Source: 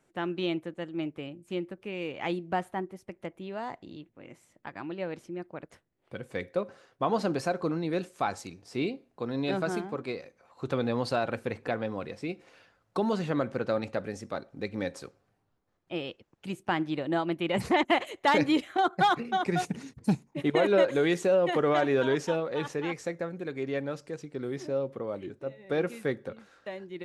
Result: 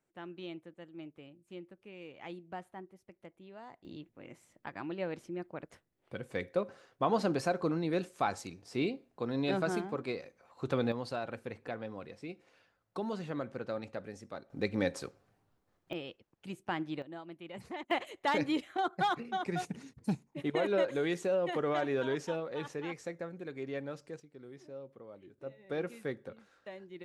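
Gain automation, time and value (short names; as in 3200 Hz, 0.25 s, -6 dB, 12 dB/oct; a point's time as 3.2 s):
-13.5 dB
from 3.85 s -2 dB
from 10.92 s -9 dB
from 14.5 s +1.5 dB
from 15.93 s -7 dB
from 17.02 s -17.5 dB
from 17.91 s -7 dB
from 24.2 s -16 dB
from 25.38 s -7.5 dB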